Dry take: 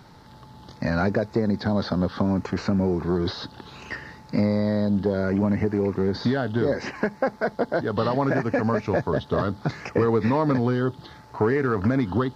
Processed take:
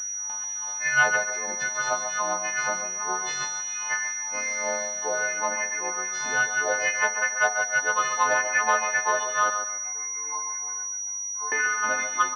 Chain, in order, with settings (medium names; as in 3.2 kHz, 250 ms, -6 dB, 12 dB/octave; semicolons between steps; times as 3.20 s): partials quantised in pitch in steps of 3 st; gate with hold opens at -36 dBFS; upward compressor, threshold -39 dBFS; companded quantiser 8-bit; 9.50–11.52 s: feedback comb 150 Hz, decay 0.82 s, harmonics all, mix 100%; LFO high-pass sine 2.5 Hz 820–2000 Hz; feedback delay 140 ms, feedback 31%, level -7.5 dB; simulated room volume 990 m³, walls furnished, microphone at 0.66 m; class-D stage that switches slowly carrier 5.8 kHz